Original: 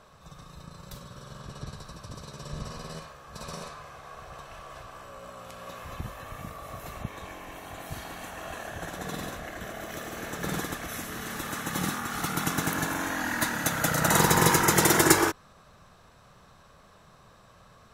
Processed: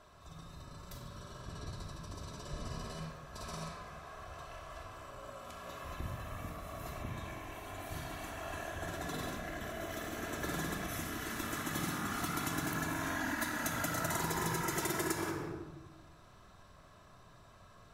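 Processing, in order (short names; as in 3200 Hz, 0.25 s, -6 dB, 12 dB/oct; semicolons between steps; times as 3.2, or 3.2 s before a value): shoebox room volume 3700 m³, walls furnished, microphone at 3 m; compressor 6:1, threshold -26 dBFS, peak gain reduction 15 dB; gain -6.5 dB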